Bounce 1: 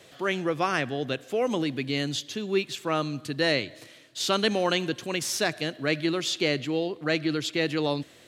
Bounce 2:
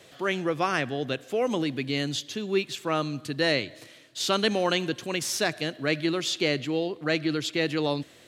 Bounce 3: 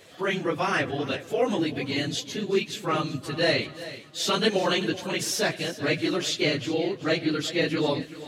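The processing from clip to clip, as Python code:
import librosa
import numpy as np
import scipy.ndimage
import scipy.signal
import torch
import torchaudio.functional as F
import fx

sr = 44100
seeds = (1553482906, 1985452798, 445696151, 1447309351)

y1 = x
y2 = fx.phase_scramble(y1, sr, seeds[0], window_ms=50)
y2 = fx.echo_feedback(y2, sr, ms=382, feedback_pct=35, wet_db=-15.0)
y2 = y2 * 10.0 ** (1.0 / 20.0)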